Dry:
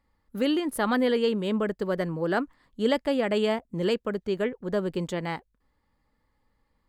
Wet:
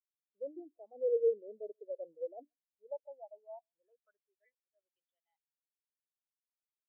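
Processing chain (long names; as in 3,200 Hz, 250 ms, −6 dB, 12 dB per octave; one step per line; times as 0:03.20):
parametric band 690 Hz +11 dB 0.68 octaves
mains-hum notches 60/120/180/240/300 Hz
reversed playback
downward compressor 6 to 1, threshold −29 dBFS, peak gain reduction 14.5 dB
reversed playback
band-pass filter sweep 470 Hz → 7,000 Hz, 0:02.29–0:06.28
on a send: single-tap delay 136 ms −21.5 dB
on the sum: every bin expanded away from the loudest bin 2.5 to 1
level +2 dB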